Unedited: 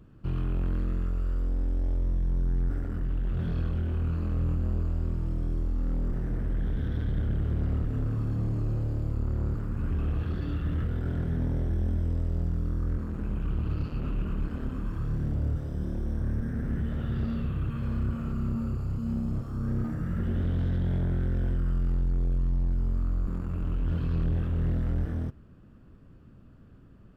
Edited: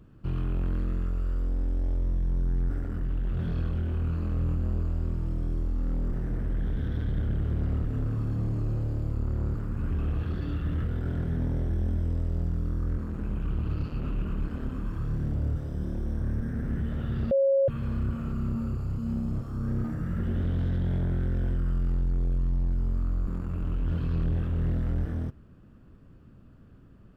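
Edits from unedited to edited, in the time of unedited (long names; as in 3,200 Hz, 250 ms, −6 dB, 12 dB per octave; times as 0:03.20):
0:17.31–0:17.68: beep over 546 Hz −19 dBFS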